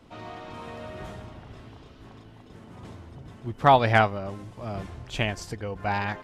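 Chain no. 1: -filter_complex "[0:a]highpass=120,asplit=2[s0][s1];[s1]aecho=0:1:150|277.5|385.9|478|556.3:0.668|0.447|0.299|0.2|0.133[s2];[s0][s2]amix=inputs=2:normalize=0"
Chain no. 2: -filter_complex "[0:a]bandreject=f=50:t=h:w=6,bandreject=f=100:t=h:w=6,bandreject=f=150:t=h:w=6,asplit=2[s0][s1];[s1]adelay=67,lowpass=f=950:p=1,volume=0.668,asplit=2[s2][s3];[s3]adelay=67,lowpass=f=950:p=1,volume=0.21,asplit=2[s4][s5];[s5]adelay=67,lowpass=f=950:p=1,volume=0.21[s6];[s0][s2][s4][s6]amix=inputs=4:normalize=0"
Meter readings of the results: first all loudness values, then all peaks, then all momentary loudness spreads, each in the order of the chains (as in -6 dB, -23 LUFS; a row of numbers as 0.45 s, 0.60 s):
-23.0 LUFS, -24.5 LUFS; -2.5 dBFS, -5.0 dBFS; 22 LU, 25 LU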